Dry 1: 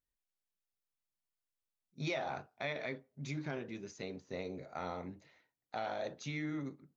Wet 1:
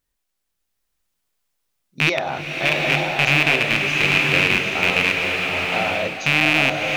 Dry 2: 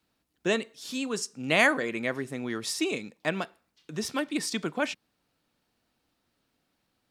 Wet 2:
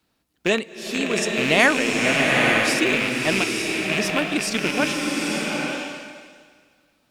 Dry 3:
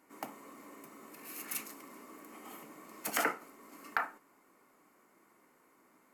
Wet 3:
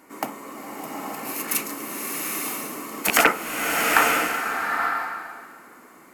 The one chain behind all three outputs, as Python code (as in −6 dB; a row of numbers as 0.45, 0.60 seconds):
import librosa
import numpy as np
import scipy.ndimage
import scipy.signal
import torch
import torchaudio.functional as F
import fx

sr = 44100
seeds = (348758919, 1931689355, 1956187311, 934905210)

y = fx.rattle_buzz(x, sr, strikes_db=-45.0, level_db=-18.0)
y = fx.rev_bloom(y, sr, seeds[0], attack_ms=890, drr_db=-0.5)
y = librosa.util.normalize(y) * 10.0 ** (-1.5 / 20.0)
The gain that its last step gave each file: +13.5, +5.0, +14.0 decibels